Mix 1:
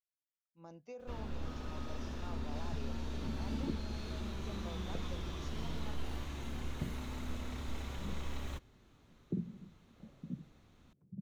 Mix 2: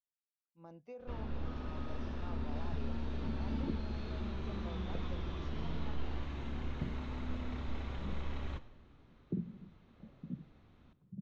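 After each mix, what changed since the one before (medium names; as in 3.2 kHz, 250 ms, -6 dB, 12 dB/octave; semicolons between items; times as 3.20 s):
first sound: send on; master: add distance through air 210 m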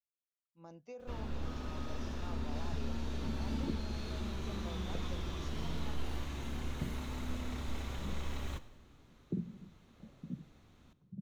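master: remove distance through air 210 m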